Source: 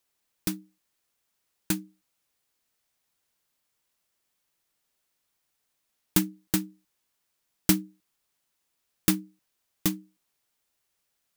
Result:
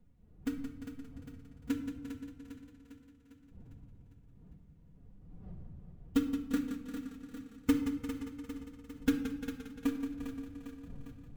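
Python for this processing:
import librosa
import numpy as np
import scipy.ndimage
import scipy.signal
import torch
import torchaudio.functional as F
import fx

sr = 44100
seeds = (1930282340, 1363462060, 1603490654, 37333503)

y = scipy.ndimage.median_filter(x, 9, mode='constant')
y = fx.dmg_wind(y, sr, seeds[0], corner_hz=120.0, level_db=-51.0)
y = fx.pitch_keep_formants(y, sr, semitones=7.0)
y = fx.echo_feedback(y, sr, ms=402, feedback_pct=57, wet_db=-9.5)
y = fx.room_shoebox(y, sr, seeds[1], volume_m3=2700.0, walls='furnished', distance_m=1.8)
y = fx.echo_warbled(y, sr, ms=174, feedback_pct=64, rate_hz=2.8, cents=55, wet_db=-9.0)
y = F.gain(torch.from_numpy(y), -5.5).numpy()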